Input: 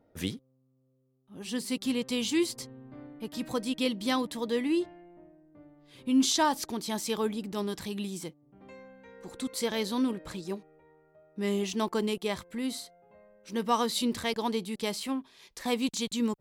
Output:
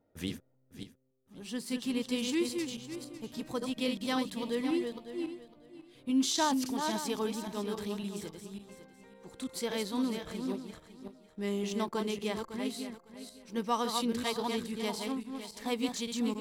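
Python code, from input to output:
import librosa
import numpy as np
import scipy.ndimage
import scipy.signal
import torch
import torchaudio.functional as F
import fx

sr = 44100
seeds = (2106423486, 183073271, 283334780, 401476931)

p1 = fx.reverse_delay_fb(x, sr, ms=277, feedback_pct=46, wet_db=-5.0)
p2 = fx.backlash(p1, sr, play_db=-34.5)
p3 = p1 + (p2 * librosa.db_to_amplitude(-8.0))
y = p3 * librosa.db_to_amplitude(-7.0)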